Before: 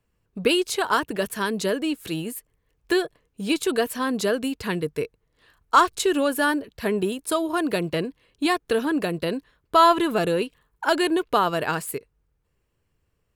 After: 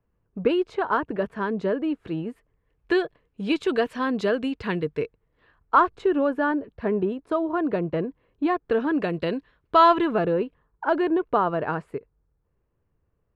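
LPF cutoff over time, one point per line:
2.27 s 1400 Hz
2.96 s 2900 Hz
4.96 s 2900 Hz
5.97 s 1300 Hz
8.52 s 1300 Hz
9.18 s 3100 Hz
9.88 s 3100 Hz
10.34 s 1300 Hz

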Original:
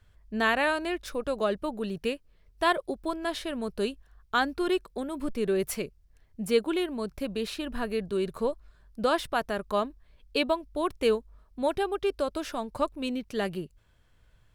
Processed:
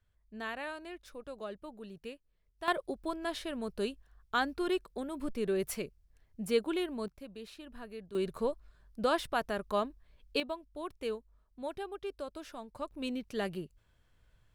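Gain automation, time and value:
-14.5 dB
from 2.68 s -5 dB
from 7.08 s -15 dB
from 8.15 s -4 dB
from 10.4 s -12 dB
from 12.91 s -5 dB

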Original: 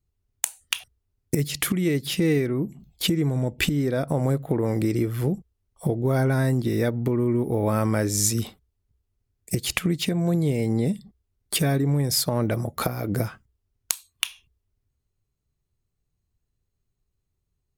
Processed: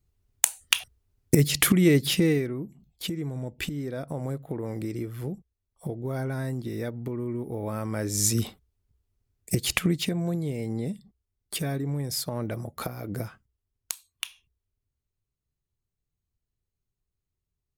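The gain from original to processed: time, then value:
2.05 s +4 dB
2.63 s -9 dB
7.87 s -9 dB
8.34 s 0 dB
9.85 s 0 dB
10.43 s -7.5 dB

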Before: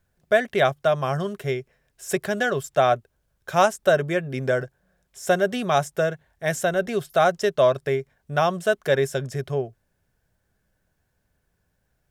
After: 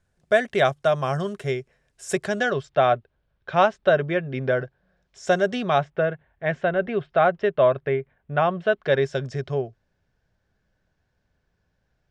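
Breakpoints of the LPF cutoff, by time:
LPF 24 dB/oct
2.17 s 9700 Hz
2.77 s 3900 Hz
4.6 s 3900 Hz
5.46 s 7500 Hz
5.9 s 2900 Hz
8.51 s 2900 Hz
9.23 s 5800 Hz

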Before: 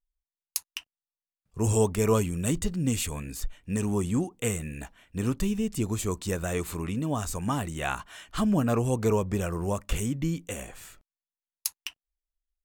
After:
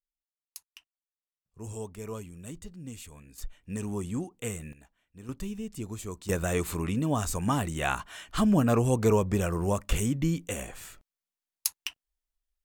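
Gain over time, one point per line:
-15 dB
from 3.38 s -6 dB
from 4.73 s -17.5 dB
from 5.29 s -8.5 dB
from 6.29 s +1.5 dB

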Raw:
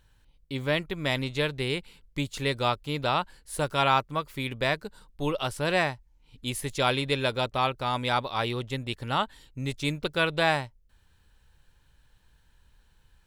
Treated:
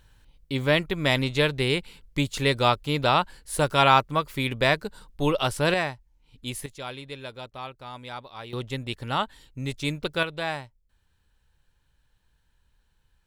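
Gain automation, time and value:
+5 dB
from 5.74 s -1.5 dB
from 6.66 s -11.5 dB
from 8.53 s +0.5 dB
from 10.23 s -6 dB

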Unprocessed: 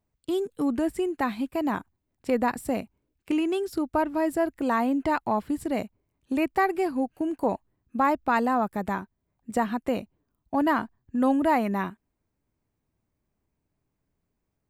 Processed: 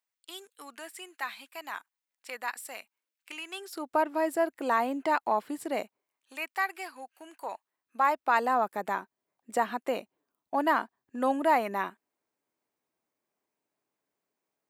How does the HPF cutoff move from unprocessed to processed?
3.47 s 1500 Hz
3.93 s 440 Hz
5.79 s 440 Hz
6.33 s 1300 Hz
7.4 s 1300 Hz
8.57 s 440 Hz

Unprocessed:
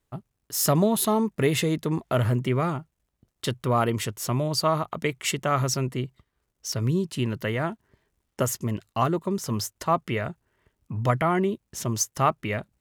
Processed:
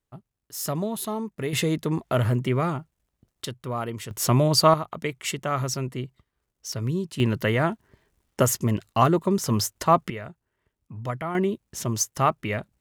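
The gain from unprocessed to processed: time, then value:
-7 dB
from 1.53 s +0.5 dB
from 3.45 s -7 dB
from 4.11 s +6 dB
from 4.74 s -2.5 dB
from 7.2 s +4.5 dB
from 10.1 s -7.5 dB
from 11.35 s +0.5 dB

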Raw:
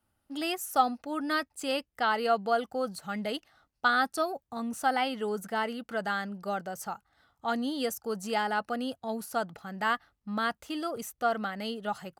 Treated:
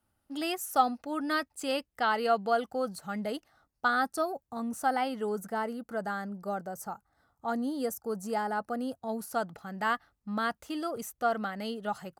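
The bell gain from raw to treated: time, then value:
bell 3000 Hz 1.4 oct
2.73 s -2 dB
3.24 s -8 dB
5.29 s -8 dB
5.72 s -14.5 dB
8.68 s -14.5 dB
9.37 s -4 dB

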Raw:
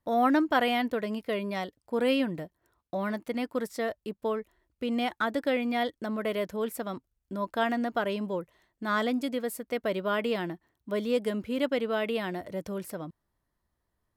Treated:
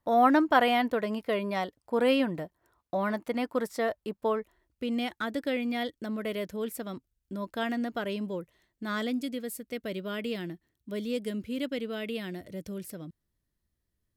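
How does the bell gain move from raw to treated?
bell 920 Hz 1.6 oct
4.39 s +4 dB
4.99 s -7.5 dB
8.87 s -7.5 dB
9.29 s -14 dB

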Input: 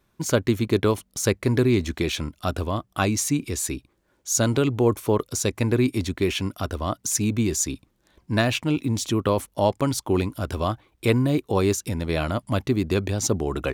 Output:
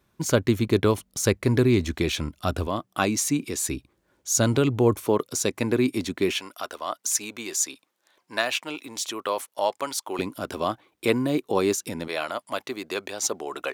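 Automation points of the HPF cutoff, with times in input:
42 Hz
from 2.67 s 170 Hz
from 3.62 s 52 Hz
from 5.06 s 180 Hz
from 6.38 s 640 Hz
from 10.19 s 230 Hz
from 12.08 s 570 Hz

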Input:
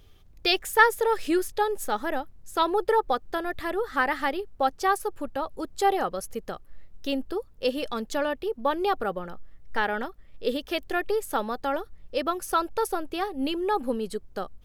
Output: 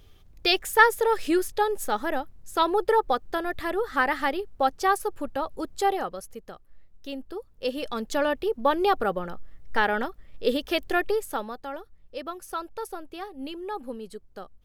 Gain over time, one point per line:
5.68 s +1 dB
6.41 s -7.5 dB
7.15 s -7.5 dB
8.29 s +3 dB
11 s +3 dB
11.66 s -8 dB

